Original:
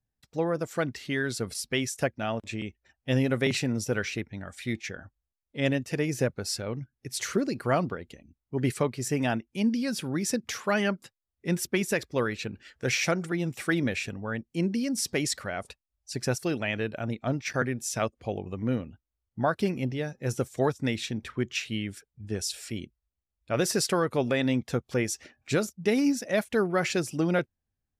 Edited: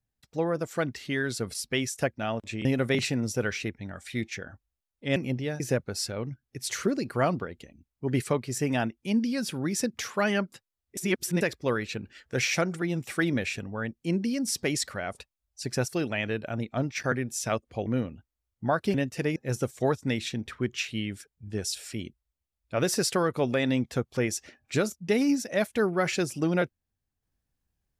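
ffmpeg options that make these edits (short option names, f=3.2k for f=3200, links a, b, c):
-filter_complex "[0:a]asplit=9[a][b][c][d][e][f][g][h][i];[a]atrim=end=2.652[j];[b]atrim=start=3.168:end=5.682[k];[c]atrim=start=19.688:end=20.132[l];[d]atrim=start=6.098:end=11.472[m];[e]atrim=start=11.468:end=11.912,asetpts=PTS-STARTPTS,areverse[n];[f]atrim=start=11.908:end=18.362[o];[g]atrim=start=18.608:end=19.692[p];[h]atrim=start=5.678:end=6.102[q];[i]atrim=start=20.128[r];[j][k]acrossfade=d=0.004:c1=hsin:c2=hsin[s];[s][l]acrossfade=d=0.004:c1=hsin:c2=hsin[t];[t][m]acrossfade=d=0.004:c1=hsin:c2=hsin[u];[u][n]acrossfade=d=0.004:c1=hsin:c2=hsin[v];[v][o]acrossfade=d=0.004:c1=hsin:c2=hsin[w];[w][p]acrossfade=d=0.004:c1=hsin:c2=hsin[x];[x][q]acrossfade=d=0.004:c1=hsin:c2=hsin[y];[y][r]acrossfade=d=0.004:c1=hsin:c2=hsin"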